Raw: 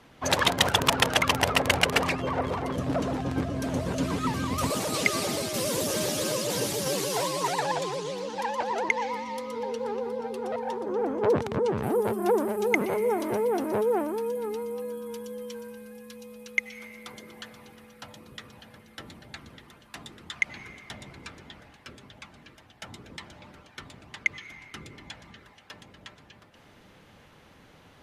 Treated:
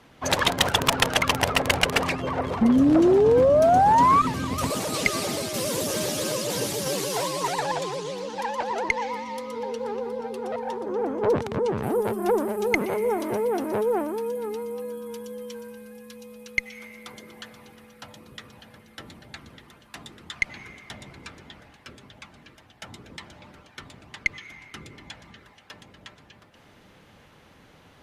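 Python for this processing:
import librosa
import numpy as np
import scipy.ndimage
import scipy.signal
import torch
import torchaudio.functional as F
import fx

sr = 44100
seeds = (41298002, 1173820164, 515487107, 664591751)

y = fx.spec_paint(x, sr, seeds[0], shape='rise', start_s=2.61, length_s=1.61, low_hz=220.0, high_hz=1200.0, level_db=-18.0)
y = fx.cheby_harmonics(y, sr, harmonics=(2,), levels_db=(-11,), full_scale_db=-3.5)
y = y * librosa.db_to_amplitude(1.0)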